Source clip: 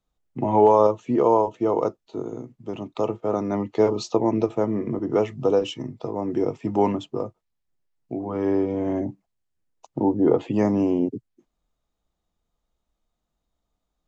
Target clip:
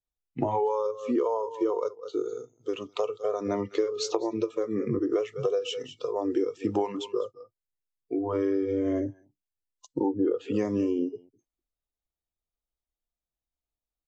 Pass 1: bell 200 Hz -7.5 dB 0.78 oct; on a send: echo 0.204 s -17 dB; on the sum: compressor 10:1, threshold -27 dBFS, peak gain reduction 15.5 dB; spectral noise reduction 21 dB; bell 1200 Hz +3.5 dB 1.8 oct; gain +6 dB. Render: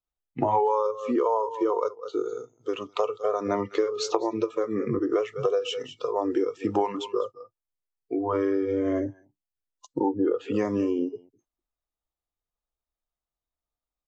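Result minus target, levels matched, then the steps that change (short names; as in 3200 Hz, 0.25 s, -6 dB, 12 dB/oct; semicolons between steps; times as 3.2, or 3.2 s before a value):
1000 Hz band +4.0 dB
change: second bell 1200 Hz -4 dB 1.8 oct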